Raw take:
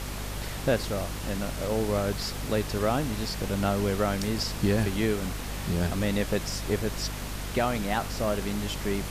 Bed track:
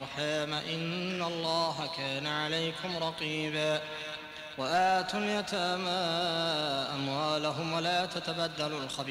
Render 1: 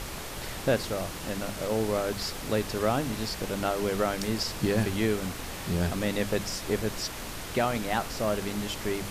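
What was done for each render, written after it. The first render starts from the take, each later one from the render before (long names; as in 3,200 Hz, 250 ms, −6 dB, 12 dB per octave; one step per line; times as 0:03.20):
mains-hum notches 50/100/150/200/250 Hz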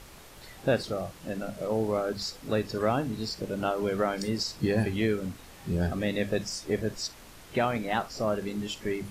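noise reduction from a noise print 12 dB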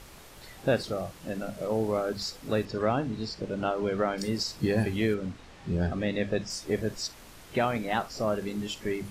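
0:02.65–0:04.18: high-frequency loss of the air 73 metres
0:05.14–0:06.50: high-frequency loss of the air 80 metres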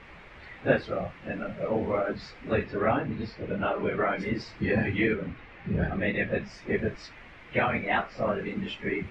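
random phases in long frames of 50 ms
low-pass with resonance 2,200 Hz, resonance Q 2.7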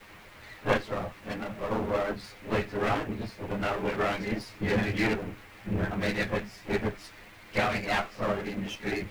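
lower of the sound and its delayed copy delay 9.7 ms
bit-depth reduction 10 bits, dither none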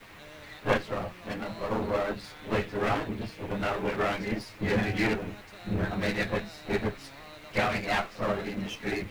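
mix in bed track −18.5 dB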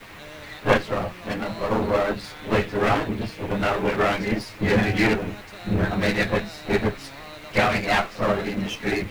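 level +7 dB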